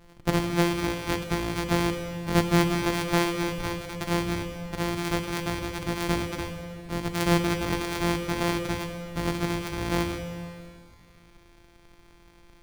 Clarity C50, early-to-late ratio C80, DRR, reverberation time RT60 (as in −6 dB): 7.0 dB, 7.5 dB, 5.5 dB, 2.4 s